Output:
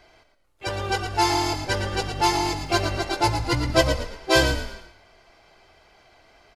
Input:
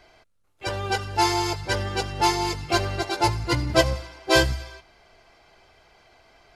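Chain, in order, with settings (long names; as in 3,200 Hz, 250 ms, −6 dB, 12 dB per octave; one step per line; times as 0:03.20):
echo with shifted repeats 113 ms, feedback 32%, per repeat −40 Hz, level −8 dB
0:02.11–0:02.72: surface crackle 260 per second −47 dBFS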